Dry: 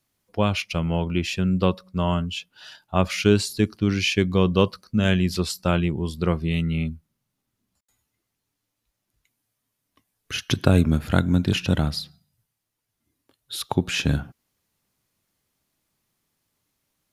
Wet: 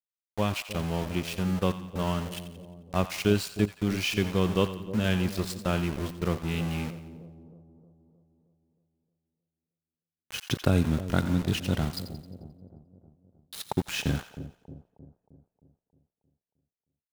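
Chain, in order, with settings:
centre clipping without the shift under −27 dBFS
echo with a time of its own for lows and highs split 720 Hz, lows 312 ms, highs 88 ms, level −12.5 dB
level −6 dB

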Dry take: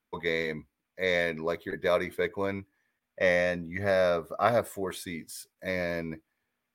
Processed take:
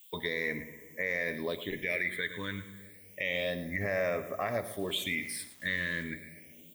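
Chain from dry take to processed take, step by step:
downward compressor 2.5 to 1, threshold −32 dBFS, peak gain reduction 9.5 dB
background noise violet −60 dBFS
high-shelf EQ 6,500 Hz +7 dB
on a send at −13 dB: convolution reverb RT60 2.0 s, pre-delay 3 ms
on the sum: all-pass phaser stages 8, 0.3 Hz, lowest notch 690–3,800 Hz
flat-topped bell 2,500 Hz +15 dB 1.2 octaves
0:04.79–0:06.03: centre clipping without the shift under −49.5 dBFS
single-tap delay 111 ms −14.5 dB
brickwall limiter −20.5 dBFS, peak gain reduction 8.5 dB

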